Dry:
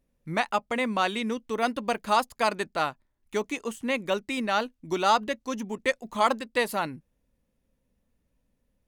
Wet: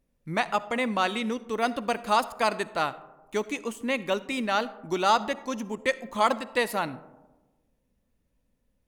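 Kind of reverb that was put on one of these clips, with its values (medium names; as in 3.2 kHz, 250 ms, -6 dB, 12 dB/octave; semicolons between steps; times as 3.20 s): algorithmic reverb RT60 1.2 s, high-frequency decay 0.3×, pre-delay 20 ms, DRR 16.5 dB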